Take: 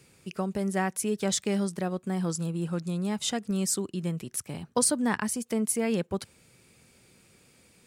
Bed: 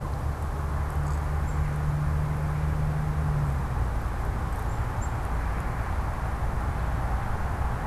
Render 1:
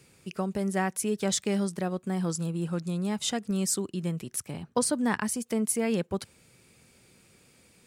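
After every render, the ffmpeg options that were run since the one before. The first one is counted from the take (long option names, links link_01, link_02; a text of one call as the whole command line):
ffmpeg -i in.wav -filter_complex "[0:a]asettb=1/sr,asplit=3[link_01][link_02][link_03];[link_01]atrim=end=4.514[link_04];[link_02]atrim=start=4.51:end=4.93,asetpts=PTS-STARTPTS,afade=type=in:duration=0.004:curve=qsin,afade=type=out:start_time=0.416:duration=0.004:curve=qsin,highshelf=frequency=4800:gain=-6[link_05];[link_03]atrim=start=4.926[link_06];[link_04][link_05]acrossfade=duration=0.004:curve1=hsin:curve2=qsin[link_07];[link_07][link_06]acrossfade=duration=0.004:curve1=qsin:curve2=hsin" out.wav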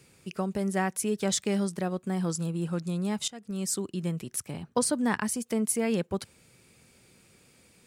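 ffmpeg -i in.wav -filter_complex "[0:a]asplit=2[link_01][link_02];[link_01]atrim=end=3.28,asetpts=PTS-STARTPTS,afade=type=out:start_time=3.276:duration=0.004:curve=hsin:silence=0.0891251[link_03];[link_02]atrim=start=3.28,asetpts=PTS-STARTPTS,afade=type=in:duration=0.8:curve=qsin:silence=0.0891251[link_04];[link_03][link_04]concat=n=2:v=0:a=1" out.wav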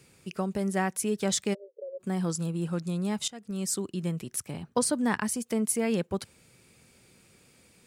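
ffmpeg -i in.wav -filter_complex "[0:a]asplit=3[link_01][link_02][link_03];[link_01]afade=type=out:start_time=1.53:duration=0.02[link_04];[link_02]asuperpass=centerf=490:order=8:qfactor=3.4,afade=type=in:start_time=1.53:duration=0.02,afade=type=out:start_time=1.99:duration=0.02[link_05];[link_03]afade=type=in:start_time=1.99:duration=0.02[link_06];[link_04][link_05][link_06]amix=inputs=3:normalize=0" out.wav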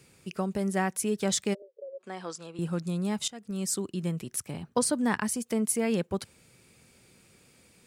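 ffmpeg -i in.wav -filter_complex "[0:a]asettb=1/sr,asplit=3[link_01][link_02][link_03];[link_01]atrim=end=1.624[link_04];[link_02]atrim=start=1.62:end=2.59,asetpts=PTS-STARTPTS,afade=type=in:duration=0.004:curve=qsin,afade=type=out:start_time=0.966:duration=0.004:curve=qsin,highpass=500,lowpass=5100[link_05];[link_03]atrim=start=2.586[link_06];[link_04][link_05]acrossfade=duration=0.004:curve1=hsin:curve2=qsin[link_07];[link_07][link_06]acrossfade=duration=0.004:curve1=qsin:curve2=hsin" out.wav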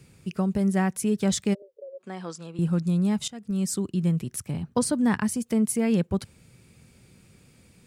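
ffmpeg -i in.wav -af "bass=frequency=250:gain=10,treble=frequency=4000:gain=-1" out.wav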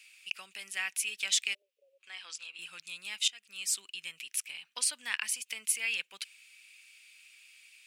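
ffmpeg -i in.wav -af "highpass=frequency=2600:width_type=q:width=4.1" out.wav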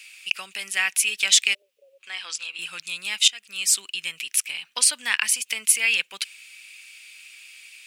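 ffmpeg -i in.wav -af "volume=11.5dB,alimiter=limit=-2dB:level=0:latency=1" out.wav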